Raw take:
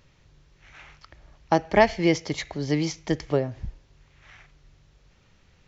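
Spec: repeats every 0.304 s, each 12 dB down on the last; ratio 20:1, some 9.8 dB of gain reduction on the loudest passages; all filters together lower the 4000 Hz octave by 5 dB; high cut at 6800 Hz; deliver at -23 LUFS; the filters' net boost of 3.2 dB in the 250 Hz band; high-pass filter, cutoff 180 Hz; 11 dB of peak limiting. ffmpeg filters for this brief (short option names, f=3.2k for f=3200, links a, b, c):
-af "highpass=180,lowpass=6.8k,equalizer=f=250:t=o:g=6,equalizer=f=4k:t=o:g=-6.5,acompressor=threshold=-20dB:ratio=20,alimiter=limit=-19dB:level=0:latency=1,aecho=1:1:304|608|912:0.251|0.0628|0.0157,volume=8.5dB"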